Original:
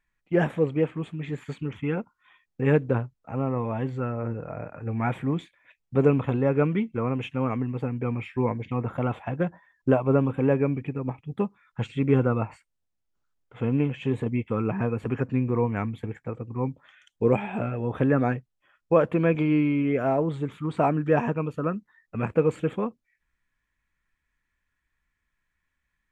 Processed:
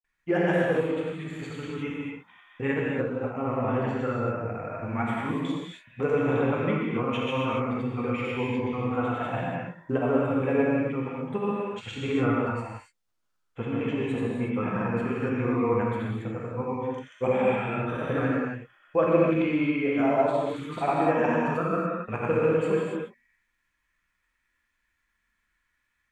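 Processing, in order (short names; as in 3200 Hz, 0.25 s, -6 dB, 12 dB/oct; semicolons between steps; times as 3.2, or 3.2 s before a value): grains, pitch spread up and down by 0 st; in parallel at -2 dB: limiter -21 dBFS, peak gain reduction 13 dB; on the sum: low shelf 440 Hz -8 dB; non-linear reverb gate 0.31 s flat, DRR -3.5 dB; gain -3 dB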